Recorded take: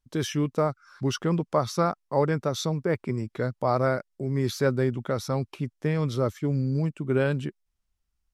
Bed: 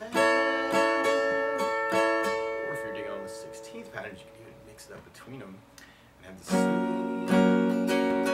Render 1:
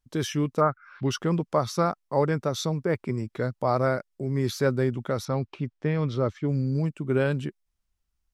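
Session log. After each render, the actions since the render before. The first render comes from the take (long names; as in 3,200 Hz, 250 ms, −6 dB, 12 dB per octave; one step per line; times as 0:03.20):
0:00.60–0:01.09: low-pass with resonance 1,300 Hz → 3,400 Hz, resonance Q 3.1
0:05.25–0:06.49: low-pass filter 4,100 Hz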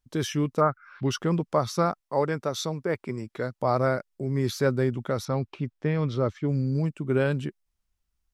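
0:02.00–0:03.60: low-shelf EQ 210 Hz −8 dB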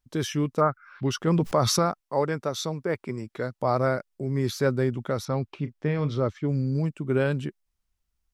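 0:01.27–0:01.79: envelope flattener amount 70%
0:05.58–0:06.21: double-tracking delay 34 ms −12.5 dB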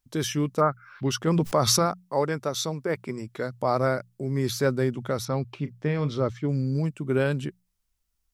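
high-shelf EQ 5,000 Hz +6.5 dB
mains-hum notches 60/120/180 Hz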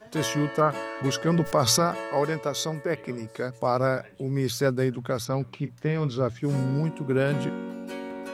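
mix in bed −10 dB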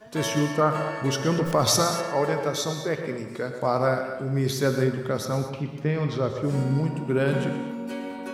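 on a send: tape delay 121 ms, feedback 57%, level −10 dB, low-pass 4,900 Hz
on the sum: reverb whose tail is shaped and stops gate 260 ms flat, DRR 7 dB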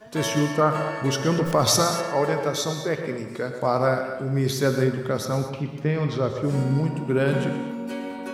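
level +1.5 dB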